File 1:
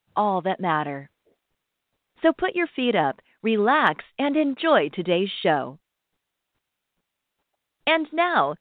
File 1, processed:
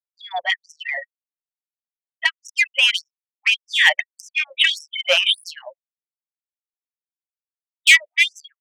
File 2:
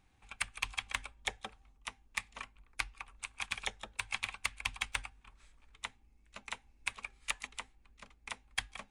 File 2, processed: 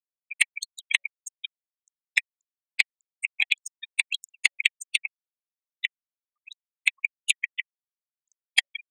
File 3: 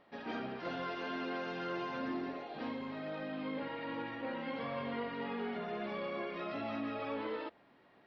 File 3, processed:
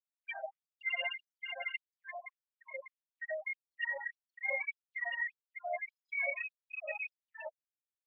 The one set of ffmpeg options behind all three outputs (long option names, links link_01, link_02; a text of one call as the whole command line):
ffmpeg -i in.wav -af "afftfilt=real='re*gte(hypot(re,im),0.0224)':imag='im*gte(hypot(re,im),0.0224)':win_size=1024:overlap=0.75,firequalizer=gain_entry='entry(290,0);entry(510,12);entry(1300,-23);entry(1900,15);entry(5200,14)':delay=0.05:min_phase=1,acontrast=54,afftfilt=real='re*gte(b*sr/1024,530*pow(5400/530,0.5+0.5*sin(2*PI*1.7*pts/sr)))':imag='im*gte(b*sr/1024,530*pow(5400/530,0.5+0.5*sin(2*PI*1.7*pts/sr)))':win_size=1024:overlap=0.75,volume=-2.5dB" out.wav